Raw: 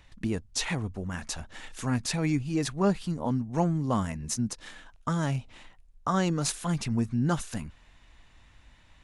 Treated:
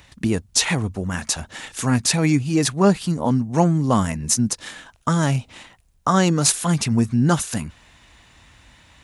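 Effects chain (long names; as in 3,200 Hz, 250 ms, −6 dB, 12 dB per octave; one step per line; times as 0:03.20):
high-pass filter 65 Hz
high-shelf EQ 6,300 Hz +7.5 dB
level +9 dB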